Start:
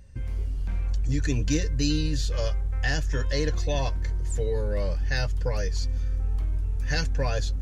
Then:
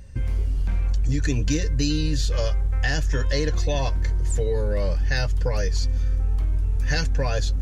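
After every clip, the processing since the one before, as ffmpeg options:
-af "acompressor=threshold=-25dB:ratio=6,volume=7dB"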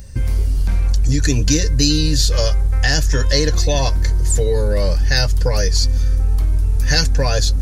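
-af "aexciter=amount=2.6:drive=4.6:freq=4.1k,volume=6.5dB"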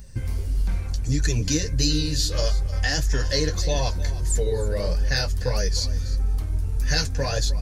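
-af "flanger=delay=4.6:depth=8:regen=-32:speed=1.6:shape=sinusoidal,aecho=1:1:307:0.158,volume=-3dB"

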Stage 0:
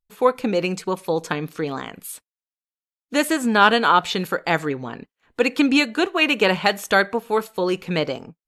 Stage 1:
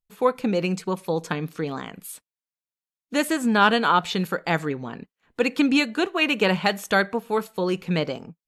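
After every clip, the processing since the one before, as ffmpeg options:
-af "equalizer=f=180:t=o:w=0.74:g=5.5,volume=-3.5dB"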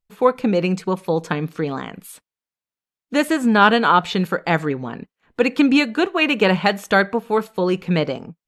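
-af "highshelf=f=4.5k:g=-8,volume=5dB"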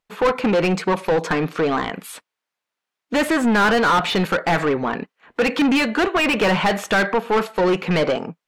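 -filter_complex "[0:a]asplit=2[a][b];[b]highpass=f=720:p=1,volume=29dB,asoftclip=type=tanh:threshold=-1dB[c];[a][c]amix=inputs=2:normalize=0,lowpass=f=2.2k:p=1,volume=-6dB,volume=-8dB"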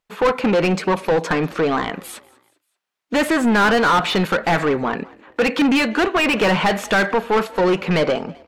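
-filter_complex "[0:a]asplit=4[a][b][c][d];[b]adelay=194,afreqshift=38,volume=-23dB[e];[c]adelay=388,afreqshift=76,volume=-29.7dB[f];[d]adelay=582,afreqshift=114,volume=-36.5dB[g];[a][e][f][g]amix=inputs=4:normalize=0,volume=1dB"

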